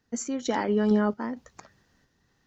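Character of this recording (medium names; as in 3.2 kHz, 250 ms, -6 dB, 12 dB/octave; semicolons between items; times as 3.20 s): random-step tremolo 4.4 Hz, depth 80%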